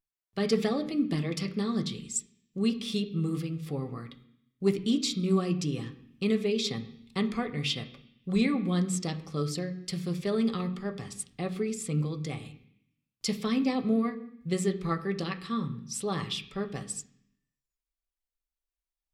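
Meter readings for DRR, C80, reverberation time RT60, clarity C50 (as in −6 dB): 4.0 dB, 16.0 dB, 0.65 s, 13.5 dB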